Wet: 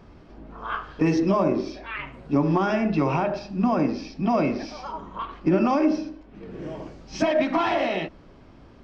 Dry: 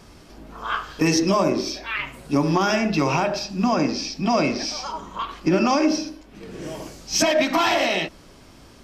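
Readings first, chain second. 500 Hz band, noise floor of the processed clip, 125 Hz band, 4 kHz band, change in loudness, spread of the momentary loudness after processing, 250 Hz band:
-1.5 dB, -50 dBFS, -0.5 dB, -12.5 dB, -2.5 dB, 15 LU, -1.0 dB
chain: tape spacing loss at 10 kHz 31 dB

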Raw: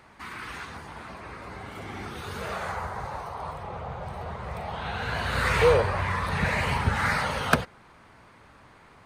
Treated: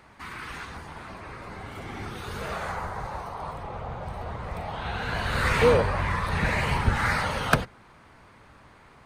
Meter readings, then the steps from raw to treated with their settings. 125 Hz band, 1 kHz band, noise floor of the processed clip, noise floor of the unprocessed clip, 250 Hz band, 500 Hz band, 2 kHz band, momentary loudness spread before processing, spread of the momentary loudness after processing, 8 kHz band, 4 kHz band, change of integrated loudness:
+1.0 dB, 0.0 dB, -53 dBFS, -54 dBFS, +1.5 dB, 0.0 dB, 0.0 dB, 17 LU, 17 LU, 0.0 dB, 0.0 dB, +0.5 dB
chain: octaver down 1 oct, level -3 dB

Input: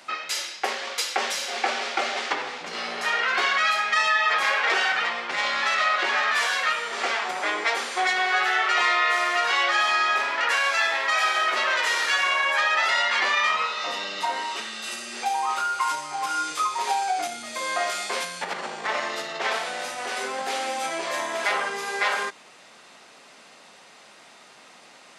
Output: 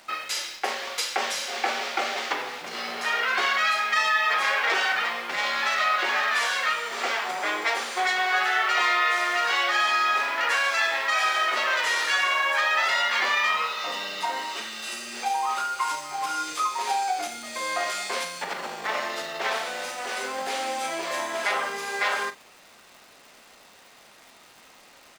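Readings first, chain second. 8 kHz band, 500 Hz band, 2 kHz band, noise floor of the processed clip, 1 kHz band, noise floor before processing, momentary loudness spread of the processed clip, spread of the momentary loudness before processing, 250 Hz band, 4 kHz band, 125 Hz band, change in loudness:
-1.0 dB, -1.5 dB, -1.0 dB, -53 dBFS, -1.0 dB, -50 dBFS, 9 LU, 9 LU, -1.0 dB, -1.0 dB, n/a, -1.0 dB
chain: HPF 140 Hz 24 dB/oct; in parallel at -11.5 dB: bit-crush 6-bit; on the sum: crackle 450/s -39 dBFS; doubler 42 ms -11.5 dB; gain -3.5 dB

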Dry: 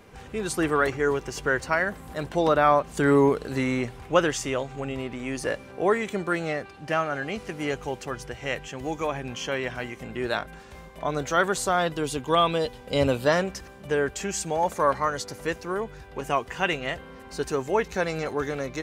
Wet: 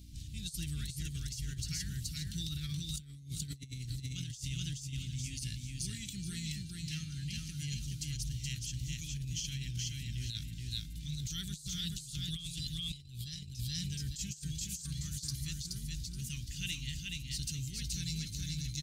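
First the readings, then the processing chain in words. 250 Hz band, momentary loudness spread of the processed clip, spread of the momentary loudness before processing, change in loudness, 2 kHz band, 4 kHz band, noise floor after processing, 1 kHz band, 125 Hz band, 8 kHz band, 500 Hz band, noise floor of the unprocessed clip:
-14.5 dB, 4 LU, 11 LU, -13.0 dB, -21.5 dB, -3.5 dB, -49 dBFS, under -40 dB, -2.5 dB, -3.0 dB, under -40 dB, -45 dBFS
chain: Chebyshev band-stop 130–3900 Hz, order 3; feedback echo 0.425 s, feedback 28%, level -3 dB; hum 60 Hz, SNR 18 dB; negative-ratio compressor -39 dBFS, ratio -0.5; gain +1 dB

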